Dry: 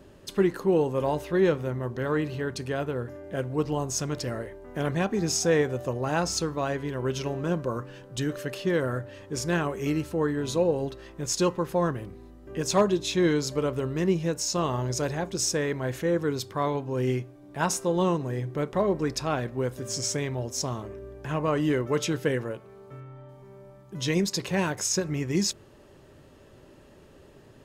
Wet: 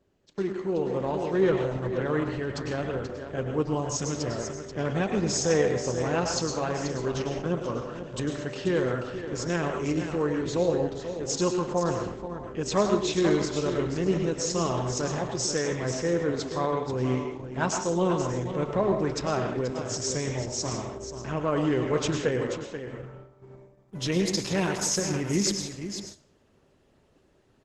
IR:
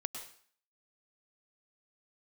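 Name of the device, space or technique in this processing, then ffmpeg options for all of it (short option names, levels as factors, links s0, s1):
speakerphone in a meeting room: -filter_complex "[0:a]aecho=1:1:484:0.335[s0];[1:a]atrim=start_sample=2205[s1];[s0][s1]afir=irnorm=-1:irlink=0,asplit=2[s2][s3];[s3]adelay=120,highpass=300,lowpass=3400,asoftclip=type=hard:threshold=0.112,volume=0.126[s4];[s2][s4]amix=inputs=2:normalize=0,dynaudnorm=f=700:g=3:m=2.24,agate=range=0.282:threshold=0.0158:ratio=16:detection=peak,volume=0.501" -ar 48000 -c:a libopus -b:a 12k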